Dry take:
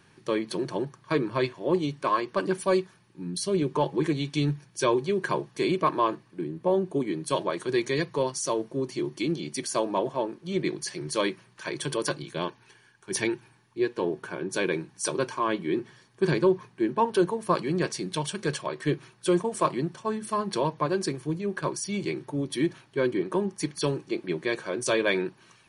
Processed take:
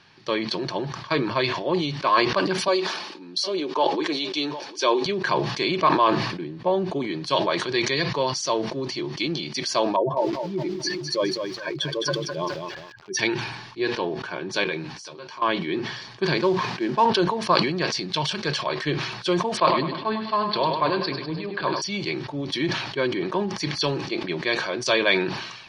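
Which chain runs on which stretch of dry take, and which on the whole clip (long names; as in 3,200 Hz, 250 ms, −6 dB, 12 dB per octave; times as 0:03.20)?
0:02.68–0:05.06: high-pass filter 270 Hz 24 dB per octave + parametric band 1,900 Hz −4 dB 0.79 octaves + single-tap delay 755 ms −22.5 dB
0:09.96–0:13.19: expanding power law on the bin magnitudes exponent 2.1 + feedback echo at a low word length 209 ms, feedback 35%, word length 8 bits, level −6 dB
0:14.64–0:15.42: double-tracking delay 13 ms −6.5 dB + downward compressor 3 to 1, threshold −44 dBFS
0:16.37–0:17.06: variable-slope delta modulation 64 kbit/s + high-pass filter 150 Hz + high-shelf EQ 5,700 Hz −5 dB
0:19.57–0:21.82: Butterworth low-pass 4,800 Hz 72 dB per octave + mains-hum notches 50/100/150/200/250/300/350/400/450 Hz + feedback echo with a high-pass in the loop 101 ms, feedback 51%, high-pass 160 Hz, level −8.5 dB
whole clip: drawn EQ curve 450 Hz 0 dB, 700 Hz +7 dB, 1,500 Hz +5 dB, 4,900 Hz +12 dB, 9,000 Hz −15 dB; level that may fall only so fast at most 51 dB per second; level −1 dB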